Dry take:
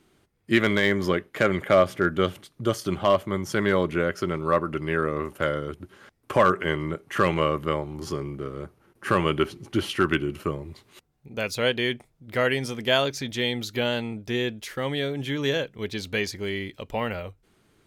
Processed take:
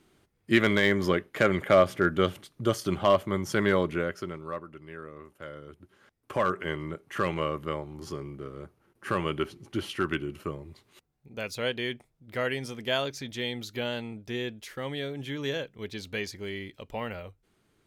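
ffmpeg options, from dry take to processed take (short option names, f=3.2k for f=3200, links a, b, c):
-af "volume=9.5dB,afade=t=out:st=3.68:d=0.68:silence=0.334965,afade=t=out:st=4.36:d=0.35:silence=0.473151,afade=t=in:st=5.41:d=1.22:silence=0.281838"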